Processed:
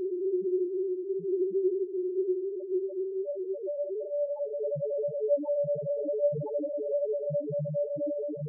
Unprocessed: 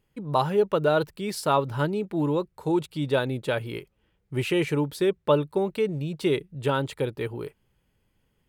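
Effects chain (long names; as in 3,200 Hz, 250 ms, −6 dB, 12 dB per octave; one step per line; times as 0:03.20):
pitch vibrato 4.3 Hz 31 cents
extreme stretch with random phases 19×, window 0.50 s, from 0:05.01
spectral peaks only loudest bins 1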